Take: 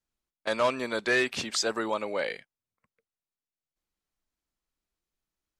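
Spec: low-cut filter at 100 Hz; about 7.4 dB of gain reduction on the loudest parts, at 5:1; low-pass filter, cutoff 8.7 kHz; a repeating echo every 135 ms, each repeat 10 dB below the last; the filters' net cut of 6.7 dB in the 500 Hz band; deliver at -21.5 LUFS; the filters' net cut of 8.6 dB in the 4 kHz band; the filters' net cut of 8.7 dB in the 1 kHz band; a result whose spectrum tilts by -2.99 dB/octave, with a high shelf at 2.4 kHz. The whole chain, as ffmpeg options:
-af "highpass=100,lowpass=8700,equalizer=f=500:t=o:g=-6,equalizer=f=1000:t=o:g=-8,highshelf=f=2400:g=-3.5,equalizer=f=4000:t=o:g=-7,acompressor=threshold=0.02:ratio=5,aecho=1:1:135|270|405|540:0.316|0.101|0.0324|0.0104,volume=7.5"

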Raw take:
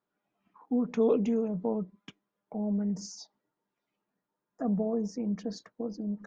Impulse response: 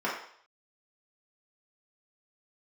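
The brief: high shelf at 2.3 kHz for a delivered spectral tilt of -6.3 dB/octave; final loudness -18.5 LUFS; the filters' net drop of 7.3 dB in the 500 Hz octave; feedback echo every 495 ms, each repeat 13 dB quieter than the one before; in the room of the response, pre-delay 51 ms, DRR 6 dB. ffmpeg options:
-filter_complex "[0:a]equalizer=f=500:t=o:g=-8,highshelf=f=2300:g=-6,aecho=1:1:495|990|1485:0.224|0.0493|0.0108,asplit=2[s0][s1];[1:a]atrim=start_sample=2205,adelay=51[s2];[s1][s2]afir=irnorm=-1:irlink=0,volume=0.15[s3];[s0][s3]amix=inputs=2:normalize=0,volume=5.31"

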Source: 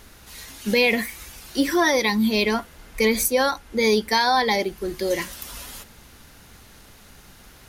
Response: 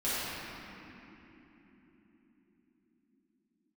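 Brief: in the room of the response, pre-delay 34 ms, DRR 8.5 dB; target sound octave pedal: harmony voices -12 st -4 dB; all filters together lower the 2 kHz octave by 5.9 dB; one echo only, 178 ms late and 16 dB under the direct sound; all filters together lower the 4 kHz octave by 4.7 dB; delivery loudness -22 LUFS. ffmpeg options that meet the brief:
-filter_complex "[0:a]equalizer=f=2000:t=o:g=-6,equalizer=f=4000:t=o:g=-4,aecho=1:1:178:0.158,asplit=2[s0][s1];[1:a]atrim=start_sample=2205,adelay=34[s2];[s1][s2]afir=irnorm=-1:irlink=0,volume=0.126[s3];[s0][s3]amix=inputs=2:normalize=0,asplit=2[s4][s5];[s5]asetrate=22050,aresample=44100,atempo=2,volume=0.631[s6];[s4][s6]amix=inputs=2:normalize=0,volume=0.944"

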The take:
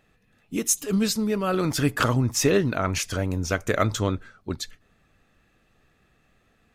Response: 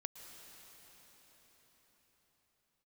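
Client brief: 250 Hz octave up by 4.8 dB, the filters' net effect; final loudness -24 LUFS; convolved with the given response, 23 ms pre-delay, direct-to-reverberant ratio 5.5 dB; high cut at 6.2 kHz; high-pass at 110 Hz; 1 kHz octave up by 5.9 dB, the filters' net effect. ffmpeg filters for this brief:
-filter_complex "[0:a]highpass=110,lowpass=6200,equalizer=f=250:t=o:g=6,equalizer=f=1000:t=o:g=8,asplit=2[s0][s1];[1:a]atrim=start_sample=2205,adelay=23[s2];[s1][s2]afir=irnorm=-1:irlink=0,volume=0.75[s3];[s0][s3]amix=inputs=2:normalize=0,volume=0.708"

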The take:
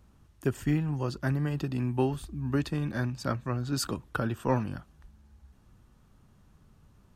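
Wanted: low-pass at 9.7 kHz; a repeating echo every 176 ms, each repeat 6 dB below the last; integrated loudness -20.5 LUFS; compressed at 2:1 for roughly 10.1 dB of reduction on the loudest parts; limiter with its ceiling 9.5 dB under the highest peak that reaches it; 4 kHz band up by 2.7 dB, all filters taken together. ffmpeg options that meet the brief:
-af "lowpass=9700,equalizer=f=4000:t=o:g=3.5,acompressor=threshold=0.00891:ratio=2,alimiter=level_in=2.11:limit=0.0631:level=0:latency=1,volume=0.473,aecho=1:1:176|352|528|704|880|1056:0.501|0.251|0.125|0.0626|0.0313|0.0157,volume=9.44"

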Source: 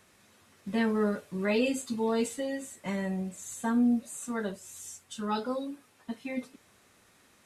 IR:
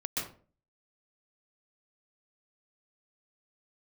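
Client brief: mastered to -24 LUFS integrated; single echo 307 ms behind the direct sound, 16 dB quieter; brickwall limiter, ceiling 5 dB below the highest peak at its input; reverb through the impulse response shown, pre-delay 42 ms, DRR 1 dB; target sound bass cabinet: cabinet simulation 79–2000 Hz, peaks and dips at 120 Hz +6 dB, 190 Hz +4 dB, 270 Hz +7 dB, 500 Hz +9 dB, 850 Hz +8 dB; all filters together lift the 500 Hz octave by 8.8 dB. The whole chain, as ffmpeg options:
-filter_complex "[0:a]equalizer=f=500:t=o:g=3,alimiter=limit=0.0944:level=0:latency=1,aecho=1:1:307:0.158,asplit=2[s0][s1];[1:a]atrim=start_sample=2205,adelay=42[s2];[s1][s2]afir=irnorm=-1:irlink=0,volume=0.531[s3];[s0][s3]amix=inputs=2:normalize=0,highpass=f=79:w=0.5412,highpass=f=79:w=1.3066,equalizer=f=120:t=q:w=4:g=6,equalizer=f=190:t=q:w=4:g=4,equalizer=f=270:t=q:w=4:g=7,equalizer=f=500:t=q:w=4:g=9,equalizer=f=850:t=q:w=4:g=8,lowpass=f=2000:w=0.5412,lowpass=f=2000:w=1.3066,volume=0.891"

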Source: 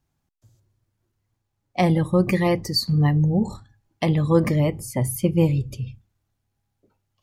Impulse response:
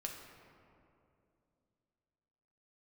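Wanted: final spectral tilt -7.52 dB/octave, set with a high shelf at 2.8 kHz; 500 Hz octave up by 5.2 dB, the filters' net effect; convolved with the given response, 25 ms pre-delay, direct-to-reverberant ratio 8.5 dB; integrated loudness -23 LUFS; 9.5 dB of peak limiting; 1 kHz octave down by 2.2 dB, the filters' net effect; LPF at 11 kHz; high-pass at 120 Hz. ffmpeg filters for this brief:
-filter_complex "[0:a]highpass=120,lowpass=11000,equalizer=f=500:t=o:g=8,equalizer=f=1000:t=o:g=-7.5,highshelf=f=2800:g=-8,alimiter=limit=0.237:level=0:latency=1,asplit=2[s0][s1];[1:a]atrim=start_sample=2205,adelay=25[s2];[s1][s2]afir=irnorm=-1:irlink=0,volume=0.422[s3];[s0][s3]amix=inputs=2:normalize=0,volume=0.944"

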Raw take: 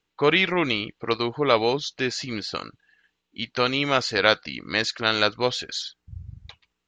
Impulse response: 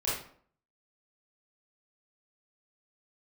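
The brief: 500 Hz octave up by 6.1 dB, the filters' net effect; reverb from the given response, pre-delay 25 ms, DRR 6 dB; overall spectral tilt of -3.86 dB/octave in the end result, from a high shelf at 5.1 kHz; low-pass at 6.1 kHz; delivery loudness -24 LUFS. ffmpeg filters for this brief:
-filter_complex "[0:a]lowpass=6100,equalizer=f=500:t=o:g=7,highshelf=f=5100:g=9,asplit=2[s0][s1];[1:a]atrim=start_sample=2205,adelay=25[s2];[s1][s2]afir=irnorm=-1:irlink=0,volume=0.211[s3];[s0][s3]amix=inputs=2:normalize=0,volume=0.562"

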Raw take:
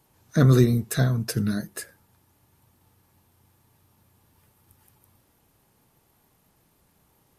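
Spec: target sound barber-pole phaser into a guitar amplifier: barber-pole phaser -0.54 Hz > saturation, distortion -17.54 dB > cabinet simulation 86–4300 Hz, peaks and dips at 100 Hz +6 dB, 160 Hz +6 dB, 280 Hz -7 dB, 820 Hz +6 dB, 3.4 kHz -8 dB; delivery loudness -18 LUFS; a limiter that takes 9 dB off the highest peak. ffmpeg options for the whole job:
-filter_complex "[0:a]alimiter=limit=0.178:level=0:latency=1,asplit=2[s0][s1];[s1]afreqshift=-0.54[s2];[s0][s2]amix=inputs=2:normalize=1,asoftclip=threshold=0.0891,highpass=86,equalizer=f=100:t=q:w=4:g=6,equalizer=f=160:t=q:w=4:g=6,equalizer=f=280:t=q:w=4:g=-7,equalizer=f=820:t=q:w=4:g=6,equalizer=f=3400:t=q:w=4:g=-8,lowpass=f=4300:w=0.5412,lowpass=f=4300:w=1.3066,volume=3.98"

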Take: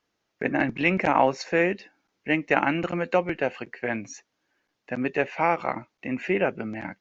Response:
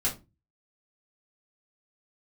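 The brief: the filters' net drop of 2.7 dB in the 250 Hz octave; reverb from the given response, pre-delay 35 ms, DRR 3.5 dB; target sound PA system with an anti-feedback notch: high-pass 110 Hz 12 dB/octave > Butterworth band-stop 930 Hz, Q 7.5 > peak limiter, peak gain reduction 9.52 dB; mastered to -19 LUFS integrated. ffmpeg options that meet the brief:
-filter_complex "[0:a]equalizer=f=250:t=o:g=-3.5,asplit=2[s0][s1];[1:a]atrim=start_sample=2205,adelay=35[s2];[s1][s2]afir=irnorm=-1:irlink=0,volume=0.299[s3];[s0][s3]amix=inputs=2:normalize=0,highpass=110,asuperstop=centerf=930:order=8:qfactor=7.5,volume=2.82,alimiter=limit=0.447:level=0:latency=1"

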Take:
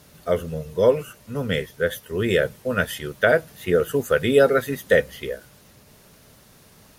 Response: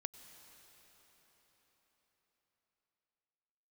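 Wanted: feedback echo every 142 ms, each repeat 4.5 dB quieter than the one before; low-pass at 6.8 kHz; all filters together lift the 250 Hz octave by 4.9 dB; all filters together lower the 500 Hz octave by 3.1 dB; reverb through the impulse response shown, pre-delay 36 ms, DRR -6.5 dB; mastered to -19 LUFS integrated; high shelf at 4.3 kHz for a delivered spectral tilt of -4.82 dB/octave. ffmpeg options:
-filter_complex "[0:a]lowpass=6800,equalizer=f=250:t=o:g=7.5,equalizer=f=500:t=o:g=-5.5,highshelf=f=4300:g=3.5,aecho=1:1:142|284|426|568|710|852|994|1136|1278:0.596|0.357|0.214|0.129|0.0772|0.0463|0.0278|0.0167|0.01,asplit=2[s0][s1];[1:a]atrim=start_sample=2205,adelay=36[s2];[s1][s2]afir=irnorm=-1:irlink=0,volume=2.99[s3];[s0][s3]amix=inputs=2:normalize=0,volume=0.562"

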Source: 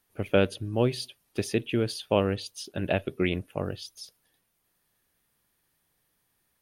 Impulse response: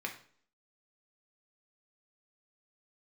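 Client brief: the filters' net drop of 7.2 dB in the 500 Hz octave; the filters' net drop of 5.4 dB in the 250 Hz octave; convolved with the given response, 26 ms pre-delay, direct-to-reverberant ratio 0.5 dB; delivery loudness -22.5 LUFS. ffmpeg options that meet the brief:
-filter_complex "[0:a]equalizer=f=250:t=o:g=-5,equalizer=f=500:t=o:g=-7.5,asplit=2[s0][s1];[1:a]atrim=start_sample=2205,adelay=26[s2];[s1][s2]afir=irnorm=-1:irlink=0,volume=0.708[s3];[s0][s3]amix=inputs=2:normalize=0,volume=2.66"

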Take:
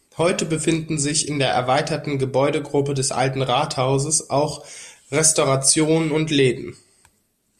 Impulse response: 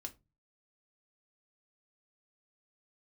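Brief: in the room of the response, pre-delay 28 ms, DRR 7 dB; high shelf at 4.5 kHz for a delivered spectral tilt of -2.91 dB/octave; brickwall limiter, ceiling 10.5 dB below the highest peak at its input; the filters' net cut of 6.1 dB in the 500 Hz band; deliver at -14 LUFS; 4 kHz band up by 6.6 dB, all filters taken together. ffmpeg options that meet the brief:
-filter_complex "[0:a]equalizer=f=500:t=o:g=-8,equalizer=f=4000:t=o:g=6,highshelf=f=4500:g=4.5,alimiter=limit=0.355:level=0:latency=1,asplit=2[s0][s1];[1:a]atrim=start_sample=2205,adelay=28[s2];[s1][s2]afir=irnorm=-1:irlink=0,volume=0.708[s3];[s0][s3]amix=inputs=2:normalize=0,volume=2.11"

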